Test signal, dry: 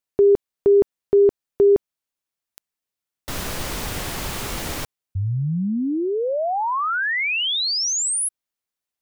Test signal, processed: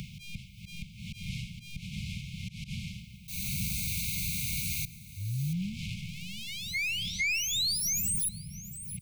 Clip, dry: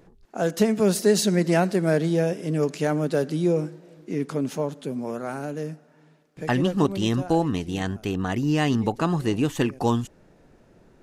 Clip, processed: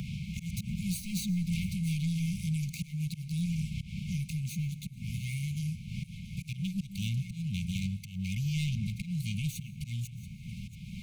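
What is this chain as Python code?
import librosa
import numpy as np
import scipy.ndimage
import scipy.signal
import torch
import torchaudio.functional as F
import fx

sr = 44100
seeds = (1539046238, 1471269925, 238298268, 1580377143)

p1 = fx.lower_of_two(x, sr, delay_ms=0.47)
p2 = fx.dmg_wind(p1, sr, seeds[0], corner_hz=480.0, level_db=-32.0)
p3 = fx.highpass(p2, sr, hz=69.0, slope=6)
p4 = fx.high_shelf(p3, sr, hz=9800.0, db=11.0)
p5 = fx.auto_swell(p4, sr, attack_ms=359.0)
p6 = fx.high_shelf(p5, sr, hz=4100.0, db=-6.0)
p7 = 10.0 ** (-22.0 / 20.0) * np.tanh(p6 / 10.0 ** (-22.0 / 20.0))
p8 = fx.brickwall_bandstop(p7, sr, low_hz=210.0, high_hz=2100.0)
p9 = p8 + fx.echo_single(p8, sr, ms=680, db=-24.0, dry=0)
p10 = fx.rev_plate(p9, sr, seeds[1], rt60_s=1.1, hf_ratio=0.45, predelay_ms=90, drr_db=18.5)
y = fx.band_squash(p10, sr, depth_pct=70)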